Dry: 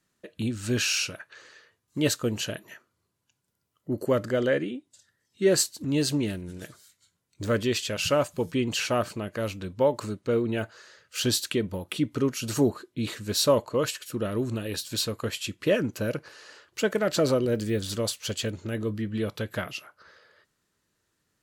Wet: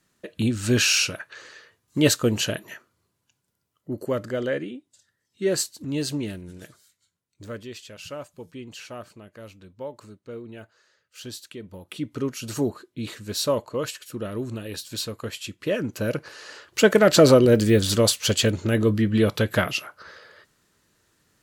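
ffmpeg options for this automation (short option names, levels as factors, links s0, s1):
-af "volume=25.1,afade=t=out:st=2.69:d=1.29:silence=0.398107,afade=t=out:st=6.51:d=1.15:silence=0.298538,afade=t=in:st=11.57:d=0.66:silence=0.298538,afade=t=in:st=15.73:d=1.2:silence=0.266073"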